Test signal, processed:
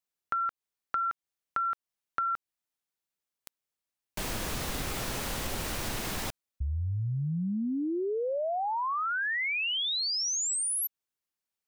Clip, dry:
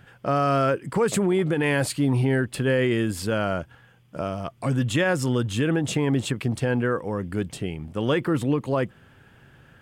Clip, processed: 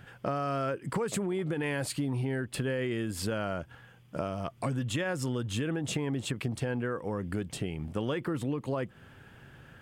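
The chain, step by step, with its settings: compression 6:1, threshold -29 dBFS

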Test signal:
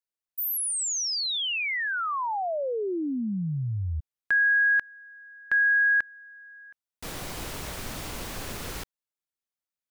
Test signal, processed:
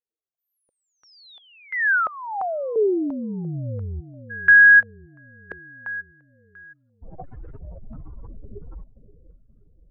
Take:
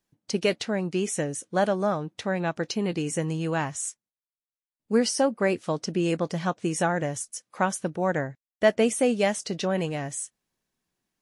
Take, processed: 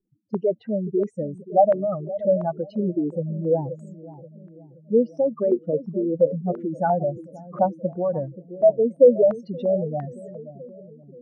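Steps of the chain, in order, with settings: spectral contrast enhancement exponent 3.7; bucket-brigade echo 527 ms, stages 2048, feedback 60%, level -14 dB; step-sequenced low-pass 2.9 Hz 430–1600 Hz

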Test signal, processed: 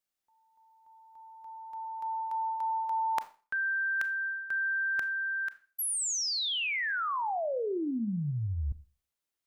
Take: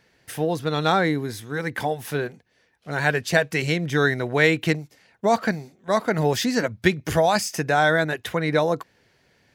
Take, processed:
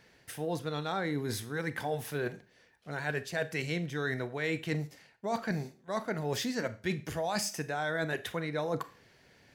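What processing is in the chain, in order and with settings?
reverse; compression 6:1, threshold -31 dBFS; reverse; Schroeder reverb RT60 0.36 s, combs from 27 ms, DRR 13 dB

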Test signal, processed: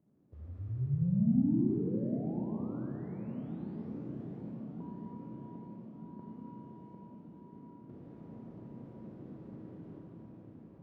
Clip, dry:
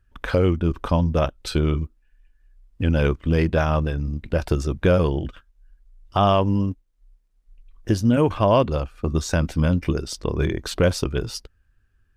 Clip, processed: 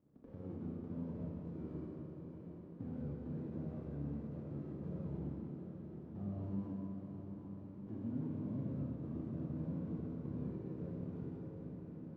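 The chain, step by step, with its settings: formants flattened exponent 0.1; crackle 560 per s -35 dBFS; saturation -8 dBFS; level rider gain up to 11.5 dB; overload inside the chain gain 18 dB; compression, threshold -25 dBFS; Butterworth band-pass 180 Hz, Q 0.96; shuffle delay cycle 1251 ms, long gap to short 1.5:1, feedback 58%, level -10 dB; Schroeder reverb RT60 3.3 s, combs from 28 ms, DRR -3 dB; trim -6 dB

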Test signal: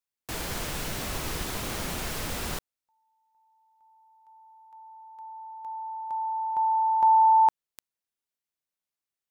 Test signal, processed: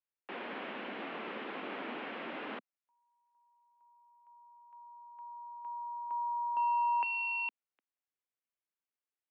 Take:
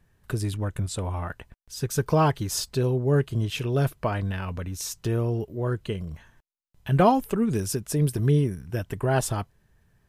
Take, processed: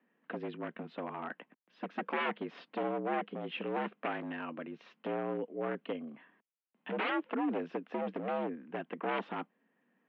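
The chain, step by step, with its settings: wavefolder -22 dBFS; mistuned SSB +66 Hz 160–2900 Hz; trim -5 dB

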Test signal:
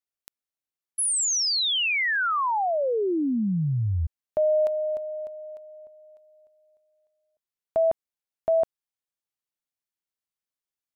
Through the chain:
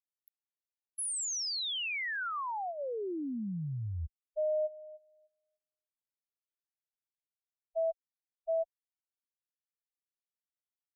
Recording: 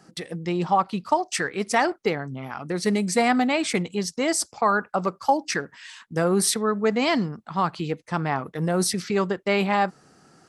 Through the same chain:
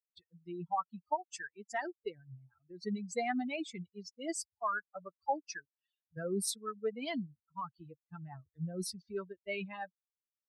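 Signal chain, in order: expander on every frequency bin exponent 3; trim -9 dB

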